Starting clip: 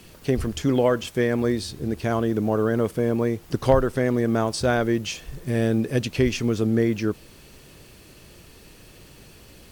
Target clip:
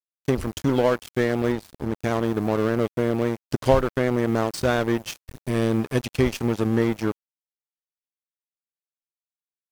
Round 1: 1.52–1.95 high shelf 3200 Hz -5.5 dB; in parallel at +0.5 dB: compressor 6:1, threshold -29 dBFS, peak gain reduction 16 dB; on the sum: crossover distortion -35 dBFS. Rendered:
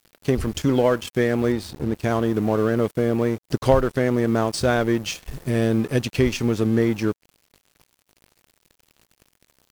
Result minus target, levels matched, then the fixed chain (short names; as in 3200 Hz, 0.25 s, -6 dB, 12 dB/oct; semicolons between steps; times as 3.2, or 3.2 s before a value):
crossover distortion: distortion -8 dB
1.52–1.95 high shelf 3200 Hz -5.5 dB; in parallel at +0.5 dB: compressor 6:1, threshold -29 dBFS, peak gain reduction 16 dB; on the sum: crossover distortion -26 dBFS